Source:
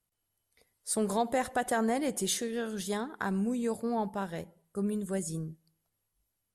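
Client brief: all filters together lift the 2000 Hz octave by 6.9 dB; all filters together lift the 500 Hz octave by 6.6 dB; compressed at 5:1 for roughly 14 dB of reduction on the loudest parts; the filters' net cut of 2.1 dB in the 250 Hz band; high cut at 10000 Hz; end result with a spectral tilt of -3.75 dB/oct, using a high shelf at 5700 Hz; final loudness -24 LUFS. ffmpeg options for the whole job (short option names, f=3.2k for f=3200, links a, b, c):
-af "lowpass=10k,equalizer=f=250:t=o:g=-4.5,equalizer=f=500:t=o:g=8.5,equalizer=f=2k:t=o:g=8,highshelf=f=5.7k:g=3,acompressor=threshold=-35dB:ratio=5,volume=14.5dB"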